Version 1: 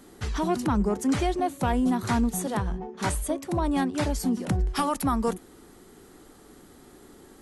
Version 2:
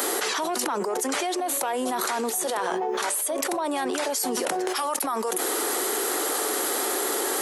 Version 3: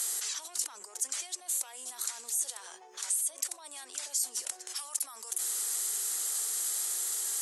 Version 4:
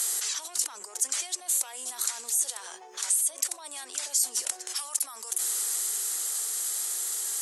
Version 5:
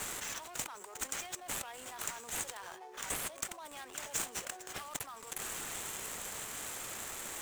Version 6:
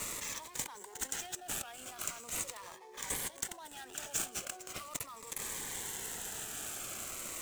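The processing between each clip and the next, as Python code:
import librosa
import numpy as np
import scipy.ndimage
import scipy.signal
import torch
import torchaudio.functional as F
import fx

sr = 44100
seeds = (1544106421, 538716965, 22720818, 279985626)

y1 = scipy.signal.sosfilt(scipy.signal.butter(4, 420.0, 'highpass', fs=sr, output='sos'), x)
y1 = fx.high_shelf(y1, sr, hz=11000.0, db=11.0)
y1 = fx.env_flatten(y1, sr, amount_pct=100)
y1 = y1 * librosa.db_to_amplitude(-3.0)
y2 = fx.bandpass_q(y1, sr, hz=7700.0, q=1.7)
y3 = fx.rider(y2, sr, range_db=4, speed_s=2.0)
y3 = y3 * librosa.db_to_amplitude(4.0)
y4 = scipy.ndimage.median_filter(y3, 9, mode='constant')
y4 = y4 * librosa.db_to_amplitude(-1.5)
y5 = fx.notch_cascade(y4, sr, direction='falling', hz=0.4)
y5 = y5 * librosa.db_to_amplitude(1.0)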